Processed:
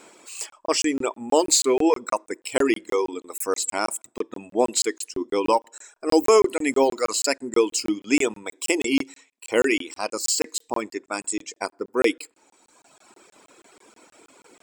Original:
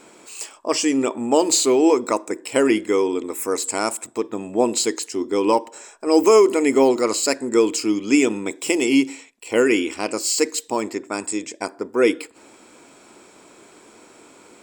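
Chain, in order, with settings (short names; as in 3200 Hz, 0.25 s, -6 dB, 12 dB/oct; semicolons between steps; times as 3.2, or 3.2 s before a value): low shelf 240 Hz -8.5 dB; reverb removal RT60 1.6 s; crackling interface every 0.16 s, samples 1024, zero, from 0.5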